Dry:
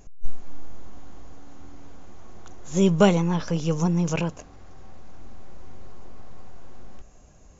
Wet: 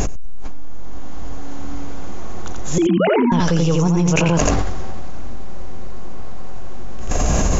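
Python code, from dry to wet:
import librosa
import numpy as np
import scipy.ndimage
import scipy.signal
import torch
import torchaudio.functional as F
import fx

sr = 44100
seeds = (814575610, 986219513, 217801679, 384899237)

p1 = fx.sine_speech(x, sr, at=(2.78, 3.32))
p2 = fx.rider(p1, sr, range_db=10, speed_s=0.5)
p3 = p2 + fx.echo_single(p2, sr, ms=85, db=-3.0, dry=0)
p4 = fx.env_flatten(p3, sr, amount_pct=100)
y = F.gain(torch.from_numpy(p4), -2.0).numpy()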